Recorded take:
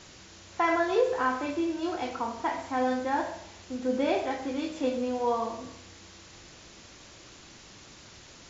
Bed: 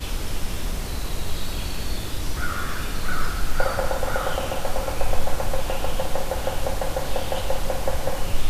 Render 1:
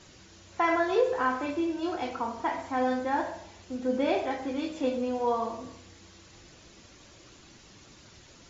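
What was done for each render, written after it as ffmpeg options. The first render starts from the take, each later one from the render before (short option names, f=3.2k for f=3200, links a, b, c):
-af "afftdn=nr=6:nf=-51"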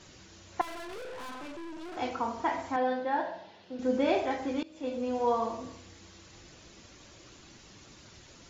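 -filter_complex "[0:a]asettb=1/sr,asplit=3[a][b][c];[a]atrim=end=0.614[d];[b]atrim=start=0.61:end=1.97,asetpts=PTS-STARTPTS,afade=t=in:d=0.004:c=qsin,afade=t=out:st=1.356:d=0.004:c=qsin,aeval=exprs='(tanh(112*val(0)+0.55)-tanh(0.55))/112':c=same[e];[c]atrim=start=1.966[f];[d][e]acrossfade=d=0.004:c1=hsin:c2=qsin[g];[g][f]acrossfade=d=0.004:c1=qsin:c2=hsin,asettb=1/sr,asplit=3[h][i][j];[h]atrim=end=2.764[k];[i]atrim=start=2.76:end=3.79,asetpts=PTS-STARTPTS,afade=t=in:d=0.004:c=qsin,afade=t=out:st=1.026:d=0.004:c=qsin,highpass=f=140:w=0.5412,highpass=f=140:w=1.3066,equalizer=f=240:t=q:w=4:g=-6,equalizer=f=340:t=q:w=4:g=-5,equalizer=f=1.2k:t=q:w=4:g=-7,equalizer=f=2.3k:t=q:w=4:g=-6,lowpass=f=4.2k:w=0.5412,lowpass=f=4.2k:w=1.3066[l];[j]atrim=start=3.786[m];[k][l]acrossfade=d=0.004:c1=hsin:c2=qsin[n];[n][m]acrossfade=d=0.004:c1=qsin:c2=hsin,asplit=2[o][p];[o]atrim=end=4.63,asetpts=PTS-STARTPTS,afade=t=out:st=4.626:d=0.004:c=hsin:silence=0.0707946[q];[p]atrim=start=4.63,asetpts=PTS-STARTPTS,afade=t=in:d=0.56:silence=0.0707946[r];[q][r]concat=n=2:v=0:a=1"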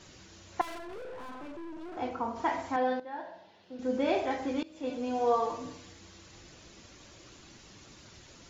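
-filter_complex "[0:a]asplit=3[a][b][c];[a]afade=t=out:st=0.77:d=0.02[d];[b]highshelf=f=2.1k:g=-11.5,afade=t=in:st=0.77:d=0.02,afade=t=out:st=2.35:d=0.02[e];[c]afade=t=in:st=2.35:d=0.02[f];[d][e][f]amix=inputs=3:normalize=0,asettb=1/sr,asplit=3[g][h][i];[g]atrim=end=4.894[j];[h]atrim=start=4.89:end=5.93,asetpts=PTS-STARTPTS,afade=t=in:d=0.004:c=qsin,afade=t=out:st=1.036:d=0.004:c=qsin,aecho=1:1:6.8:0.65,atrim=end_sample=45864[k];[i]atrim=start=5.926[l];[j][k]acrossfade=d=0.004:c1=hsin:c2=qsin[m];[m][l]acrossfade=d=0.004:c1=qsin:c2=hsin,asplit=2[n][o];[n]atrim=end=3,asetpts=PTS-STARTPTS,afade=t=out:st=2.996:d=0.004:c=hsin:silence=0.223872[p];[o]atrim=start=3,asetpts=PTS-STARTPTS,afade=t=in:d=1.39:silence=0.223872[q];[p][q]concat=n=2:v=0:a=1"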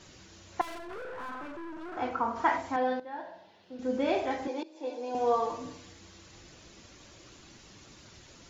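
-filter_complex "[0:a]asettb=1/sr,asplit=3[a][b][c];[a]atrim=end=0.904[d];[b]atrim=start=0.9:end=2.58,asetpts=PTS-STARTPTS,afade=t=in:d=0.004:c=qsin,afade=t=out:st=1.676:d=0.004:c=qsin,equalizer=f=1.4k:w=1.3:g=9[e];[c]atrim=start=2.576[f];[d][e]acrossfade=d=0.004:c1=hsin:c2=qsin[g];[g][f]acrossfade=d=0.004:c1=qsin:c2=hsin,asettb=1/sr,asplit=3[h][i][j];[h]atrim=end=4.474[k];[i]atrim=start=4.47:end=5.15,asetpts=PTS-STARTPTS,afade=t=in:d=0.004:c=qsin,afade=t=out:st=0.676:d=0.004:c=qsin,highpass=f=340:w=0.5412,highpass=f=340:w=1.3066,equalizer=f=350:t=q:w=4:g=6,equalizer=f=880:t=q:w=4:g=8,equalizer=f=1.3k:t=q:w=4:g=-10,equalizer=f=2k:t=q:w=4:g=-4,equalizer=f=3k:t=q:w=4:g=-7,lowpass=f=6.7k:w=0.5412,lowpass=f=6.7k:w=1.3066[l];[j]atrim=start=5.146[m];[k][l]acrossfade=d=0.004:c1=hsin:c2=qsin[n];[n][m]acrossfade=d=0.004:c1=qsin:c2=hsin"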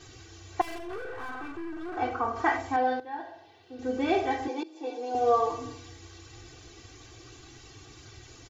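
-af "equalizer=f=110:t=o:w=0.94:g=7.5,aecho=1:1:2.6:0.87"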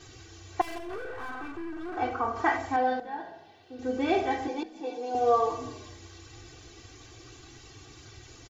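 -filter_complex "[0:a]asplit=4[a][b][c][d];[b]adelay=167,afreqshift=-33,volume=-21dB[e];[c]adelay=334,afreqshift=-66,volume=-27.4dB[f];[d]adelay=501,afreqshift=-99,volume=-33.8dB[g];[a][e][f][g]amix=inputs=4:normalize=0"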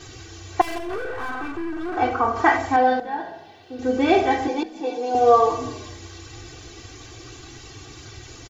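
-af "volume=8.5dB"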